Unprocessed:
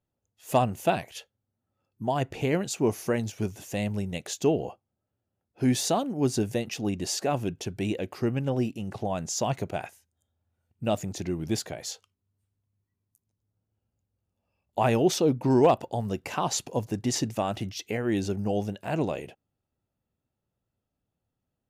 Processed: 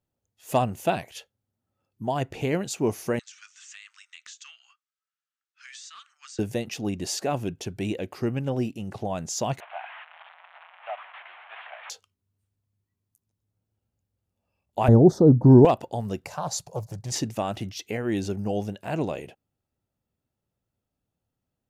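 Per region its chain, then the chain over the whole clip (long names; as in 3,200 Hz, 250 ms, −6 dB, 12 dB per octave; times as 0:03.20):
0:03.19–0:06.39: Chebyshev band-pass filter 1,200–8,100 Hz, order 5 + downward compressor 12 to 1, threshold −40 dBFS + highs frequency-modulated by the lows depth 0.18 ms
0:09.60–0:11.90: linear delta modulator 16 kbit/s, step −34.5 dBFS + Butterworth high-pass 690 Hz 48 dB per octave + high-frequency loss of the air 76 metres
0:14.88–0:15.65: Butterworth band-reject 2,600 Hz, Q 0.87 + spectral tilt −4.5 dB per octave
0:16.26–0:17.12: drawn EQ curve 170 Hz 0 dB, 260 Hz −25 dB, 600 Hz 0 dB, 3,000 Hz −14 dB, 4,400 Hz −1 dB + highs frequency-modulated by the lows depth 0.37 ms
whole clip: no processing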